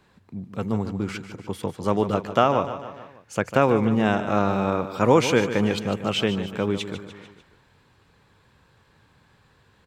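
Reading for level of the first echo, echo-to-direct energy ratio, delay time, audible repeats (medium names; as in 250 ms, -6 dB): -11.5 dB, -10.0 dB, 148 ms, 4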